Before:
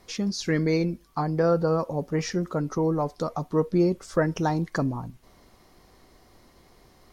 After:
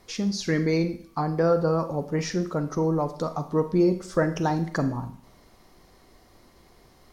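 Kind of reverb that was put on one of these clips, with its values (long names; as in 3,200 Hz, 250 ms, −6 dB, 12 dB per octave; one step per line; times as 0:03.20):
four-comb reverb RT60 0.57 s, combs from 33 ms, DRR 10 dB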